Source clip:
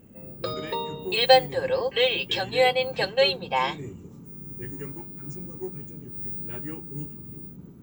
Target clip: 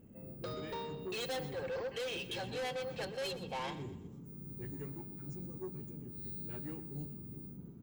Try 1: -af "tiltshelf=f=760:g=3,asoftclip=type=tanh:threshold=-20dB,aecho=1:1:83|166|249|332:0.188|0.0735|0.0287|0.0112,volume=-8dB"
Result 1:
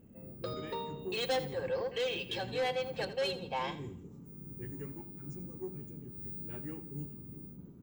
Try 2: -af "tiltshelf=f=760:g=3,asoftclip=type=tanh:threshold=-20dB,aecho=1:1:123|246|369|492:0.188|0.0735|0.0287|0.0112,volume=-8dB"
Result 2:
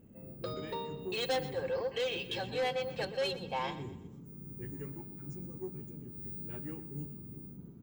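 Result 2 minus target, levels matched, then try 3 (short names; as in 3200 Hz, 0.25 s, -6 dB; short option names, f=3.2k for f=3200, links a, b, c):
soft clip: distortion -5 dB
-af "tiltshelf=f=760:g=3,asoftclip=type=tanh:threshold=-28dB,aecho=1:1:123|246|369|492:0.188|0.0735|0.0287|0.0112,volume=-8dB"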